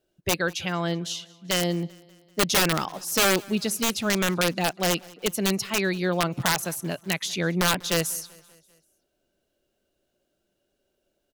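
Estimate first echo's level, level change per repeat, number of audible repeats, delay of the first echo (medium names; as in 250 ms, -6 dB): -24.0 dB, -5.0 dB, 3, 194 ms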